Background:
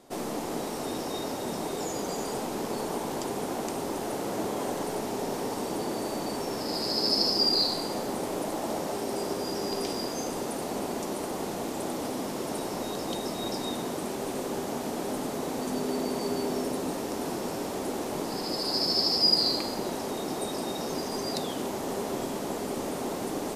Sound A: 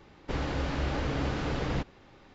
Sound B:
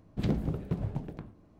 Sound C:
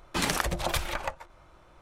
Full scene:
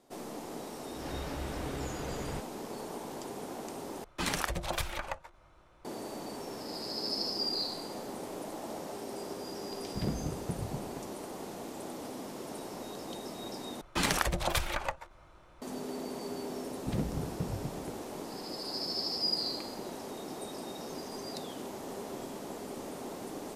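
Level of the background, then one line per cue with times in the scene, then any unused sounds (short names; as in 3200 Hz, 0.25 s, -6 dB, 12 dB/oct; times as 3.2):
background -9 dB
0.58 add A -8.5 dB + attack slew limiter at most 110 dB/s
4.04 replace with C -5 dB
9.78 add B -5 dB
13.81 replace with C -1.5 dB
16.69 add B -4 dB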